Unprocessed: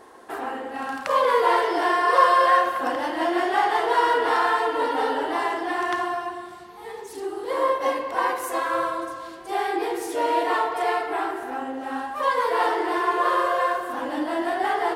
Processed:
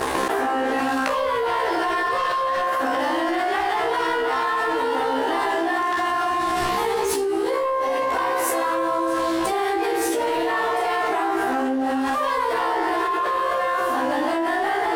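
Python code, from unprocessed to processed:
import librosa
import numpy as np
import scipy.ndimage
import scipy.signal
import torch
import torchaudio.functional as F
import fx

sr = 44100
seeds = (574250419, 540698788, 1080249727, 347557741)

y = fx.leveller(x, sr, passes=2)
y = fx.comb_fb(y, sr, f0_hz=66.0, decay_s=0.32, harmonics='all', damping=0.0, mix_pct=100)
y = fx.env_flatten(y, sr, amount_pct=100)
y = F.gain(torch.from_numpy(y), -6.5).numpy()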